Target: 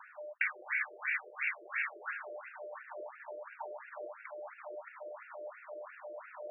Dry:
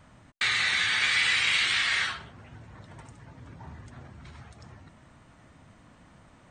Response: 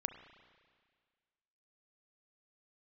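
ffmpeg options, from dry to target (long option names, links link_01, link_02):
-filter_complex "[0:a]areverse,acompressor=mode=upward:threshold=-43dB:ratio=2.5,areverse,aeval=exprs='val(0)+0.00316*sin(2*PI*600*n/s)':channel_layout=same,acrossover=split=310[link_01][link_02];[link_02]acompressor=threshold=-38dB:ratio=5[link_03];[link_01][link_03]amix=inputs=2:normalize=0[link_04];[1:a]atrim=start_sample=2205,atrim=end_sample=3087[link_05];[link_04][link_05]afir=irnorm=-1:irlink=0,afftfilt=real='re*between(b*sr/1024,470*pow(2000/470,0.5+0.5*sin(2*PI*2.9*pts/sr))/1.41,470*pow(2000/470,0.5+0.5*sin(2*PI*2.9*pts/sr))*1.41)':imag='im*between(b*sr/1024,470*pow(2000/470,0.5+0.5*sin(2*PI*2.9*pts/sr))/1.41,470*pow(2000/470,0.5+0.5*sin(2*PI*2.9*pts/sr))*1.41)':win_size=1024:overlap=0.75,volume=9.5dB"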